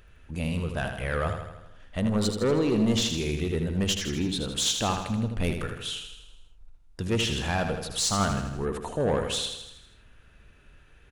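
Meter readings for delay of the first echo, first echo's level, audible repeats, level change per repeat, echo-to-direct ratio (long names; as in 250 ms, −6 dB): 80 ms, −7.0 dB, 6, −5.0 dB, −5.5 dB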